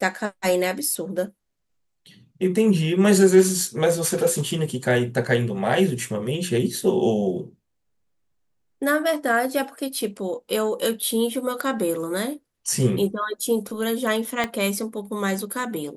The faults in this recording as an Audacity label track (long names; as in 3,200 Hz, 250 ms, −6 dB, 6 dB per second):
14.440000	14.440000	click −10 dBFS